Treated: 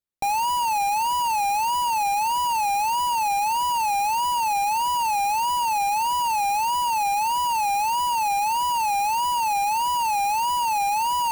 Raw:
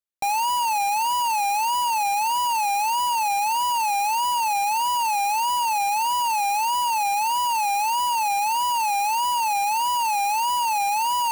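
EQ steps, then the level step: low shelf 430 Hz +10 dB; -2.0 dB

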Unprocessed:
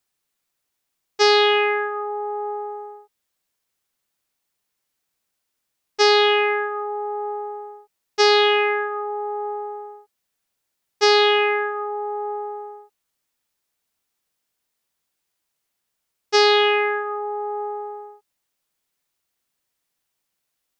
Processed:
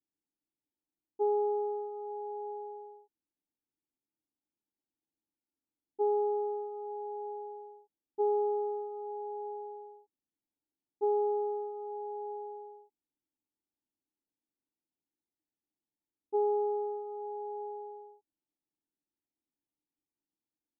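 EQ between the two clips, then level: vocal tract filter u; Butterworth band-stop 2500 Hz, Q 0.53; air absorption 440 m; +2.0 dB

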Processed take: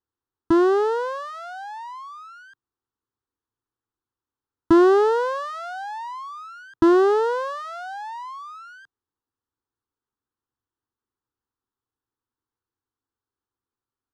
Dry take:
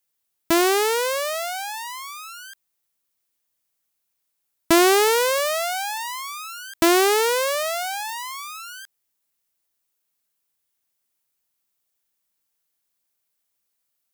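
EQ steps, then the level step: LPF 2100 Hz 12 dB/oct; bell 130 Hz +14 dB 1.7 oct; fixed phaser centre 620 Hz, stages 6; 0.0 dB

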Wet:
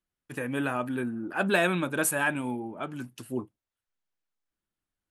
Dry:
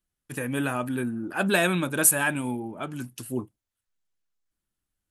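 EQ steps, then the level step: low shelf 170 Hz -7.5 dB; high shelf 4800 Hz -11.5 dB; 0.0 dB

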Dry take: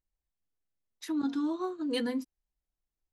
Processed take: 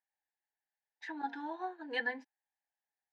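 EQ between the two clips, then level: double band-pass 1200 Hz, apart 1 oct; air absorption 98 m; tilt +1.5 dB/oct; +11.0 dB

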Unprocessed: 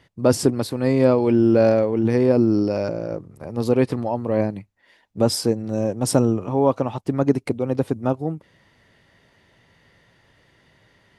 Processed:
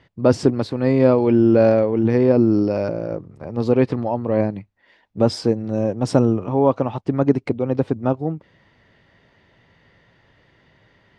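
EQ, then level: air absorption 130 m; +2.0 dB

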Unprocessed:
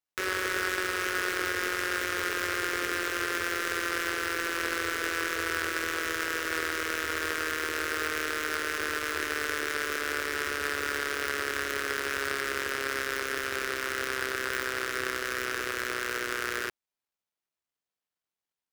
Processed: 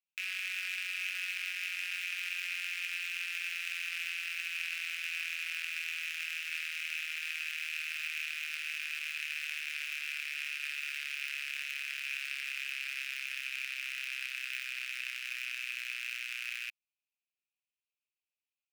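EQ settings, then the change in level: ladder high-pass 2400 Hz, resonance 80%; +1.5 dB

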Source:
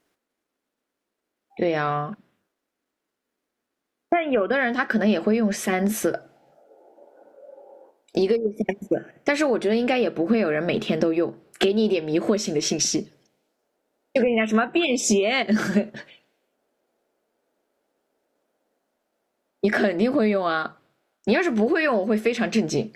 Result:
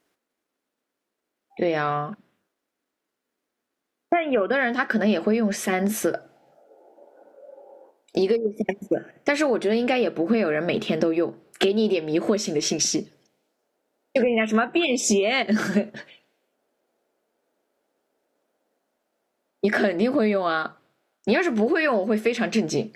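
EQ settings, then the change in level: low shelf 90 Hz -7 dB; 0.0 dB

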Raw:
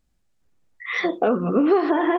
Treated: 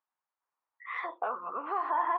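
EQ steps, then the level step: ladder band-pass 1100 Hz, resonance 65%; air absorption 51 m; +2.5 dB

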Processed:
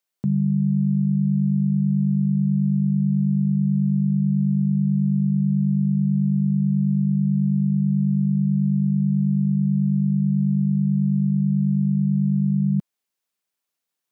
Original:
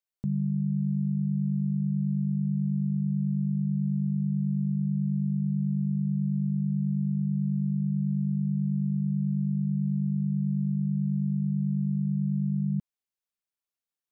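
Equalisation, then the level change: HPF 140 Hz; +9.0 dB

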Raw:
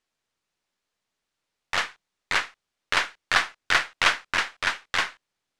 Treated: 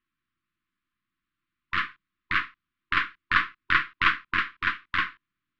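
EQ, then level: brick-wall FIR band-stop 370–1000 Hz; air absorption 440 m; +3.5 dB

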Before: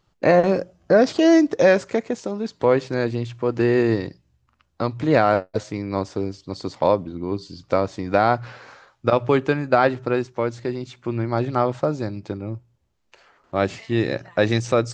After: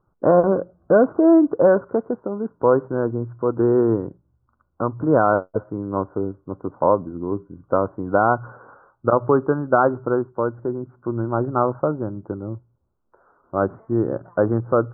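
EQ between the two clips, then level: dynamic EQ 1100 Hz, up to +3 dB, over -30 dBFS, Q 1.5; rippled Chebyshev low-pass 1500 Hz, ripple 3 dB; +1.5 dB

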